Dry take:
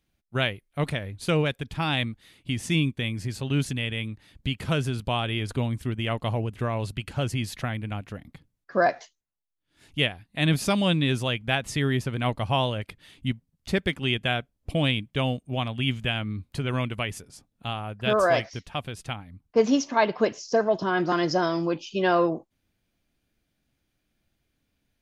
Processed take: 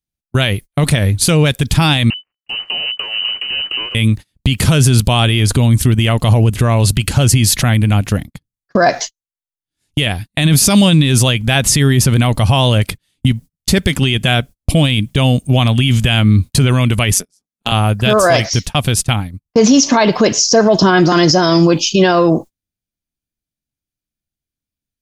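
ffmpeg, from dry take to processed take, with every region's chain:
-filter_complex "[0:a]asettb=1/sr,asplit=3[s0][s1][s2];[s0]atrim=end=2.104[s3];[s1]atrim=start=2.1:end=3.95,asetpts=PTS-STARTPTS,afade=t=in:d=0.004:c=qsin,afade=t=out:st=1.846:d=0.004:c=qsin,acompressor=threshold=0.0251:ratio=8:attack=3.2:release=140:knee=1:detection=peak,acrusher=bits=5:dc=4:mix=0:aa=0.000001,lowpass=f=2600:t=q:w=0.5098,lowpass=f=2600:t=q:w=0.6013,lowpass=f=2600:t=q:w=0.9,lowpass=f=2600:t=q:w=2.563,afreqshift=-3000[s4];[s2]atrim=start=3.946[s5];[s3][s4]acrossfade=d=0.004:c1=hsin:c2=qsin[s6];[s6][s5]acrossfade=d=0.004:c1=qsin:c2=hsin,asettb=1/sr,asplit=3[s7][s8][s9];[s7]atrim=end=17.144[s10];[s8]atrim=start=17.14:end=17.72,asetpts=PTS-STARTPTS,afade=t=in:d=0.004:c=qsin,afade=t=out:st=0.576:d=0.004:c=qsin,highpass=f=170:w=0.5412,highpass=f=170:w=1.3066,equalizer=f=5800:t=o:w=0.34:g=5,tremolo=f=190:d=0.75[s11];[s9]atrim=start=17.716[s12];[s10][s11]acrossfade=d=0.004:c1=hsin:c2=qsin[s13];[s13][s12]acrossfade=d=0.004:c1=qsin:c2=hsin,agate=range=0.0158:threshold=0.00794:ratio=16:detection=peak,bass=f=250:g=6,treble=f=4000:g=13,alimiter=level_in=8.91:limit=0.891:release=50:level=0:latency=1,volume=0.891"

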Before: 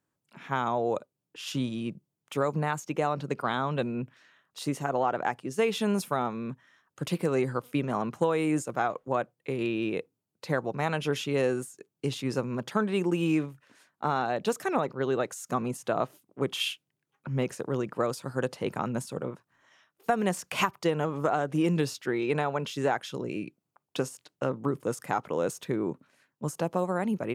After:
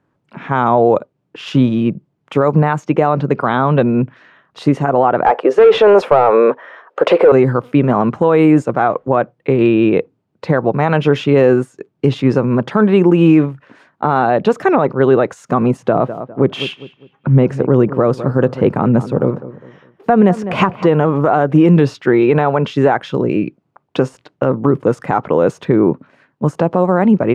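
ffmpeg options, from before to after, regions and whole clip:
-filter_complex "[0:a]asettb=1/sr,asplit=3[s0][s1][s2];[s0]atrim=end=5.264[s3];[s1]atrim=start=5.26:end=7.32,asetpts=PTS-STARTPTS,afade=t=in:d=0.004:c=qsin,afade=t=out:st=2.056:d=0.004:c=qsin,highpass=f=490:t=q:w=3.4,asplit=2[s4][s5];[s5]highpass=f=720:p=1,volume=8.91,asoftclip=type=tanh:threshold=0.376[s6];[s4][s6]amix=inputs=2:normalize=0,lowpass=f=1600:p=1,volume=0.501[s7];[s2]atrim=start=7.316[s8];[s3][s7]acrossfade=d=0.004:c1=hsin:c2=qsin[s9];[s9][s8]acrossfade=d=0.004:c1=qsin:c2=hsin,asettb=1/sr,asplit=3[s10][s11][s12];[s10]atrim=end=15.804[s13];[s11]atrim=start=15.8:end=20.87,asetpts=PTS-STARTPTS,afade=t=in:d=0.004:c=qsin,afade=t=out:st=5.066:d=0.004:c=qsin,tiltshelf=f=690:g=3,asplit=2[s14][s15];[s15]adelay=202,lowpass=f=2000:p=1,volume=0.168,asplit=2[s16][s17];[s17]adelay=202,lowpass=f=2000:p=1,volume=0.35,asplit=2[s18][s19];[s19]adelay=202,lowpass=f=2000:p=1,volume=0.35[s20];[s14][s16][s18][s20]amix=inputs=4:normalize=0,atrim=end_sample=223587[s21];[s12]atrim=start=20.866[s22];[s13][s21]acrossfade=d=0.004:c1=hsin:c2=qsin[s23];[s23][s22]acrossfade=d=0.004:c1=qsin:c2=hsin,lowpass=f=2300:p=1,aemphasis=mode=reproduction:type=75kf,alimiter=level_in=9.44:limit=0.891:release=50:level=0:latency=1,volume=0.891"

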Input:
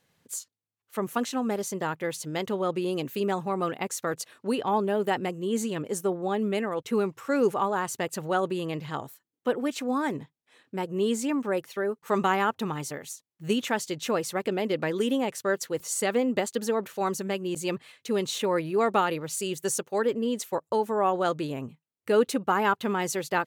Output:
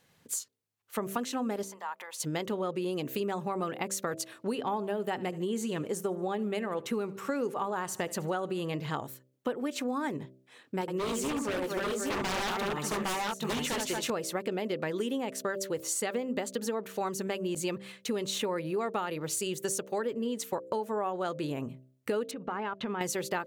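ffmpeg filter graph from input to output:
-filter_complex "[0:a]asettb=1/sr,asplit=3[s0][s1][s2];[s0]atrim=end=1.634[s3];[s1]atrim=start=1.63:end=2.2,asetpts=PTS-STARTPTS,afade=t=in:d=0.004:c=qsin,afade=t=out:st=0.566:d=0.004:c=qsin,acompressor=threshold=0.01:ratio=12:attack=3.2:release=140:knee=1:detection=peak,highpass=f=920:t=q:w=3.2[s4];[s2]atrim=start=2.196[s5];[s3][s4]acrossfade=d=0.004:c1=hsin:c2=qsin[s6];[s6][s5]acrossfade=d=0.004:c1=qsin:c2=hsin,asettb=1/sr,asplit=3[s7][s8][s9];[s7]atrim=end=4.644[s10];[s8]atrim=start=4.64:end=8.74,asetpts=PTS-STARTPTS,afade=t=in:d=0.004:c=qsin,afade=t=out:st=4.096:d=0.004:c=qsin,deesser=0.55,aecho=1:1:75|150|225:0.075|0.0345|0.0159,atrim=end_sample=180810[s11];[s9]atrim=start=8.736[s12];[s10][s11]acrossfade=d=0.004:c1=hsin:c2=qsin[s13];[s13][s12]acrossfade=d=0.004:c1=qsin:c2=hsin,asettb=1/sr,asplit=3[s14][s15][s16];[s14]atrim=end=10.814[s17];[s15]atrim=start=10.81:end=14.1,asetpts=PTS-STARTPTS,afade=t=in:d=0.004:c=qsin,afade=t=out:st=3.286:d=0.004:c=qsin,bass=f=250:g=-5,treble=f=4000:g=0,aecho=1:1:69|224|239|811|830:0.447|0.398|0.106|0.668|0.376,atrim=end_sample=145089,aeval=exprs='0.0596*(abs(mod(val(0)/0.0596+3,4)-2)-1)':c=same[s18];[s16]atrim=start=14.096[s19];[s17][s18]acrossfade=d=0.004:c1=hsin:c2=qsin[s20];[s20][s19]acrossfade=d=0.004:c1=qsin:c2=hsin,asettb=1/sr,asplit=3[s21][s22][s23];[s21]atrim=end=22.314[s24];[s22]atrim=start=22.31:end=23.01,asetpts=PTS-STARTPTS,afade=t=in:d=0.004:c=qsin,afade=t=out:st=0.696:d=0.004:c=qsin,lowpass=3400,acompressor=threshold=0.0251:ratio=6:attack=3.2:release=140:knee=1:detection=peak[s25];[s23]atrim=start=23.006[s26];[s24][s25]acrossfade=d=0.004:c1=hsin:c2=qsin[s27];[s27][s26]acrossfade=d=0.004:c1=qsin:c2=hsin,bandreject=f=64.75:t=h:w=4,bandreject=f=129.5:t=h:w=4,bandreject=f=194.25:t=h:w=4,bandreject=f=259:t=h:w=4,bandreject=f=323.75:t=h:w=4,bandreject=f=388.5:t=h:w=4,bandreject=f=453.25:t=h:w=4,bandreject=f=518:t=h:w=4,bandreject=f=582.75:t=h:w=4,bandreject=f=647.5:t=h:w=4,acompressor=threshold=0.0224:ratio=6,volume=1.5"

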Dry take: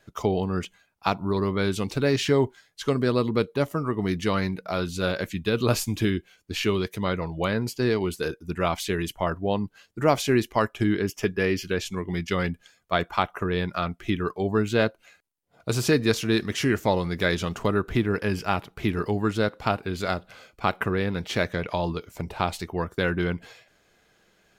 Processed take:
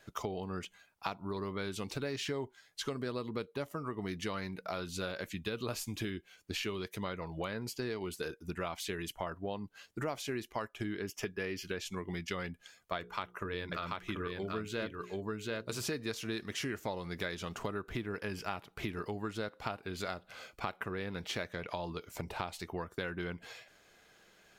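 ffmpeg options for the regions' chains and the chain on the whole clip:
-filter_complex "[0:a]asettb=1/sr,asplit=3[s0][s1][s2];[s0]atrim=end=12.984[s3];[s1]atrim=start=12.98:end=15.81,asetpts=PTS-STARTPTS,afade=t=in:d=0.004:c=qsin,afade=t=out:st=2.826:d=0.004:c=qsin,equalizer=f=750:w=6.3:g=-10.5,bandreject=f=60:t=h:w=6,bandreject=f=120:t=h:w=6,bandreject=f=180:t=h:w=6,bandreject=f=240:t=h:w=6,bandreject=f=300:t=h:w=6,bandreject=f=360:t=h:w=6,bandreject=f=420:t=h:w=6,bandreject=f=480:t=h:w=6,aecho=1:1:736:0.708,atrim=end_sample=124803[s4];[s2]atrim=start=15.806[s5];[s3][s4]acrossfade=d=0.004:c1=hsin:c2=qsin[s6];[s6][s5]acrossfade=d=0.004:c1=qsin:c2=hsin,lowshelf=f=380:g=-5.5,acompressor=threshold=0.0126:ratio=4,volume=1.12"

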